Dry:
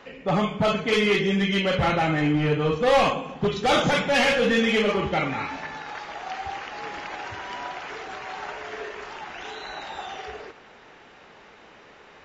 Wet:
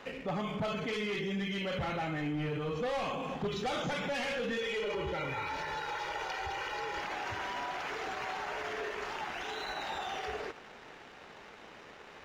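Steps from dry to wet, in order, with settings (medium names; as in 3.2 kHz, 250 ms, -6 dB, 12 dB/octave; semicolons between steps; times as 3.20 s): 4.57–7.01 s: comb 2.1 ms, depth 88%; waveshaping leveller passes 1; peak limiter -26.5 dBFS, peak gain reduction 17.5 dB; trim -2.5 dB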